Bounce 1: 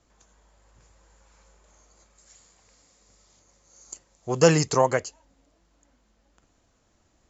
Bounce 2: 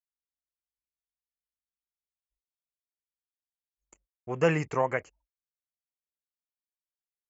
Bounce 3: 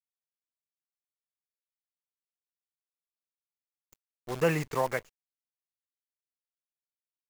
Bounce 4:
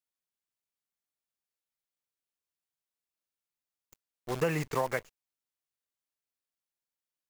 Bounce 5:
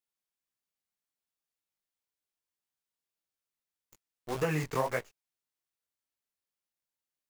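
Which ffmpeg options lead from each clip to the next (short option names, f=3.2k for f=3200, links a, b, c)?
-af "agate=range=-38dB:threshold=-51dB:ratio=16:detection=peak,anlmdn=0.0251,highshelf=f=3.2k:t=q:w=3:g=-11,volume=-7dB"
-af "acrusher=bits=7:dc=4:mix=0:aa=0.000001,volume=-2dB"
-af "acompressor=threshold=-26dB:ratio=6,volume=1.5dB"
-af "flanger=delay=16.5:depth=7.8:speed=1.8,volume=2.5dB"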